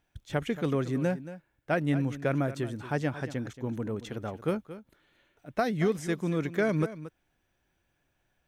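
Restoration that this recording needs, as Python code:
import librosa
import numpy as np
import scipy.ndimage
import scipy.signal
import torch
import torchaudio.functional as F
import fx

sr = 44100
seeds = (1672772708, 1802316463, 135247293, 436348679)

y = fx.fix_echo_inverse(x, sr, delay_ms=227, level_db=-14.0)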